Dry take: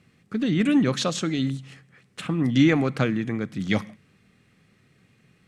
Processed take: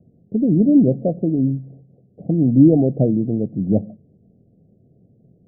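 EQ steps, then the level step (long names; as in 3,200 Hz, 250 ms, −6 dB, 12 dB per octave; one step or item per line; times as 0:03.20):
Butterworth low-pass 710 Hz 96 dB per octave
+7.0 dB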